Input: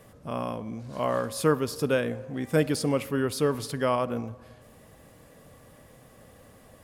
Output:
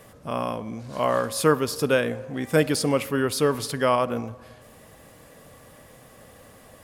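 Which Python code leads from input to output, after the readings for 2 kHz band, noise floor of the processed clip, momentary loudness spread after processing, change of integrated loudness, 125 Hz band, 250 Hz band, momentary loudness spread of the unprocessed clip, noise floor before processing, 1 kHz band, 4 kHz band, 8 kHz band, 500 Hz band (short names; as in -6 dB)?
+5.5 dB, -51 dBFS, 10 LU, +3.5 dB, +1.5 dB, +2.5 dB, 10 LU, -54 dBFS, +5.0 dB, +6.0 dB, +6.0 dB, +3.5 dB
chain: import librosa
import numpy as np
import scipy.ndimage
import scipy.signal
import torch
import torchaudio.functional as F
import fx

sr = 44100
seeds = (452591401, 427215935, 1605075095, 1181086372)

y = fx.low_shelf(x, sr, hz=460.0, db=-5.0)
y = y * 10.0 ** (6.0 / 20.0)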